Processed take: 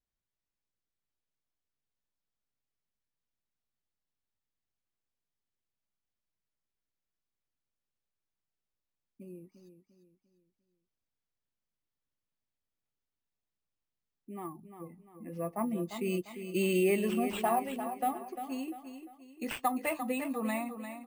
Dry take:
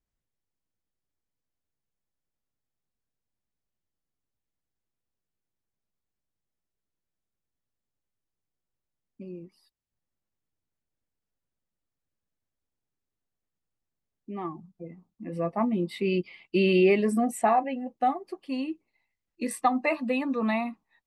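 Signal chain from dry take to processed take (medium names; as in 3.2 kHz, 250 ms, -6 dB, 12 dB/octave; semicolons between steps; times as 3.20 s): dynamic bell 9.1 kHz, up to +6 dB, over -53 dBFS, Q 0.87; on a send: feedback delay 348 ms, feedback 40%, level -9.5 dB; on the sum: careless resampling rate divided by 4×, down none, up hold; trim -7 dB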